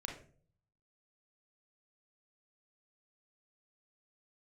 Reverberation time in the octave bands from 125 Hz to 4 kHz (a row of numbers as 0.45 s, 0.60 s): 0.95 s, 0.65 s, 0.55 s, 0.40 s, 0.35 s, 0.30 s